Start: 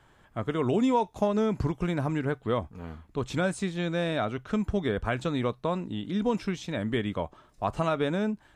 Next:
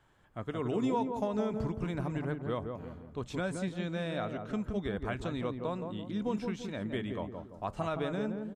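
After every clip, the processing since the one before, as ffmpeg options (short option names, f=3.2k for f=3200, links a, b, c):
-filter_complex "[0:a]asplit=2[a][b];[b]adelay=170,lowpass=f=900:p=1,volume=-4dB,asplit=2[c][d];[d]adelay=170,lowpass=f=900:p=1,volume=0.46,asplit=2[e][f];[f]adelay=170,lowpass=f=900:p=1,volume=0.46,asplit=2[g][h];[h]adelay=170,lowpass=f=900:p=1,volume=0.46,asplit=2[i][j];[j]adelay=170,lowpass=f=900:p=1,volume=0.46,asplit=2[k][l];[l]adelay=170,lowpass=f=900:p=1,volume=0.46[m];[a][c][e][g][i][k][m]amix=inputs=7:normalize=0,volume=-7.5dB"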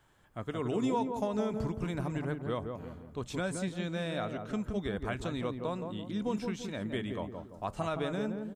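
-af "highshelf=f=5.5k:g=8"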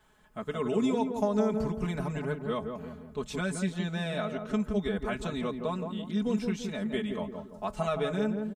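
-af "aecho=1:1:4.7:0.93"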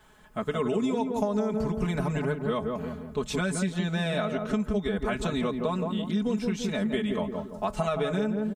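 -af "acompressor=threshold=-31dB:ratio=5,volume=7dB"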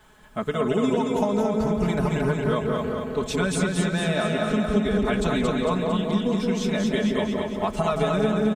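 -af "aecho=1:1:226|452|678|904|1130|1356|1582|1808:0.708|0.389|0.214|0.118|0.0648|0.0356|0.0196|0.0108,volume=3dB"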